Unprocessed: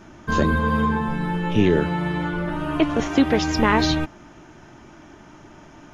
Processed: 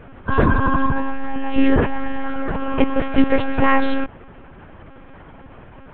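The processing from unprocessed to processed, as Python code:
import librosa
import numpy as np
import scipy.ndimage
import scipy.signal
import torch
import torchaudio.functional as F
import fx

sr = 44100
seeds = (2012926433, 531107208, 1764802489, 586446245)

y = scipy.signal.sosfilt(scipy.signal.butter(4, 3000.0, 'lowpass', fs=sr, output='sos'), x)
y = fx.lpc_monotone(y, sr, seeds[0], pitch_hz=270.0, order=10)
y = F.gain(torch.from_numpy(y), 4.5).numpy()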